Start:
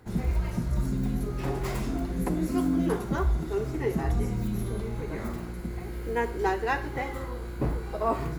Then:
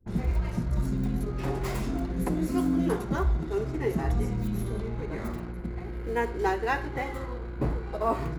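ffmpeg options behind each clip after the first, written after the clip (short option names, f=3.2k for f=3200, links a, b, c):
-af "anlmdn=0.0398"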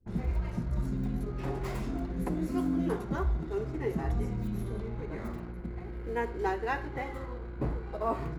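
-af "highshelf=f=4.2k:g=-6,volume=-4dB"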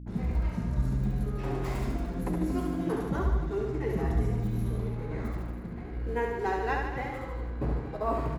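-af "aeval=exprs='val(0)+0.00891*(sin(2*PI*60*n/s)+sin(2*PI*2*60*n/s)/2+sin(2*PI*3*60*n/s)/3+sin(2*PI*4*60*n/s)/4+sin(2*PI*5*60*n/s)/5)':c=same,aecho=1:1:70|147|231.7|324.9|427.4:0.631|0.398|0.251|0.158|0.1"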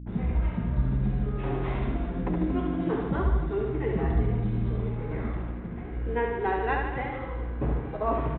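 -af "aresample=8000,aresample=44100,volume=2.5dB"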